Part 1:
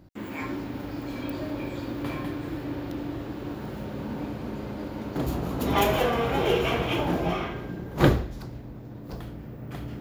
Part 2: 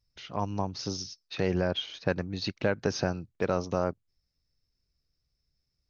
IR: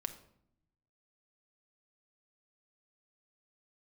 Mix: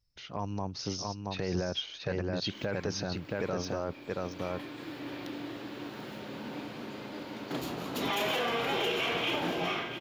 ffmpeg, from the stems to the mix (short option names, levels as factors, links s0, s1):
-filter_complex "[0:a]highpass=180,equalizer=f=3500:w=0.52:g=10,adelay=2350,volume=0.473,asplit=2[s0][s1];[s1]volume=0.2[s2];[1:a]volume=0.841,asplit=3[s3][s4][s5];[s4]volume=0.562[s6];[s5]apad=whole_len=544769[s7];[s0][s7]sidechaincompress=threshold=0.0178:ratio=8:attack=41:release=1360[s8];[s2][s6]amix=inputs=2:normalize=0,aecho=0:1:675:1[s9];[s8][s3][s9]amix=inputs=3:normalize=0,alimiter=limit=0.0794:level=0:latency=1:release=11"